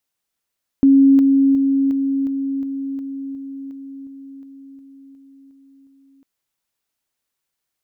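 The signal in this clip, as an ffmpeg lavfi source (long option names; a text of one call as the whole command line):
ffmpeg -f lavfi -i "aevalsrc='pow(10,(-7.5-3*floor(t/0.36))/20)*sin(2*PI*273*t)':duration=5.4:sample_rate=44100" out.wav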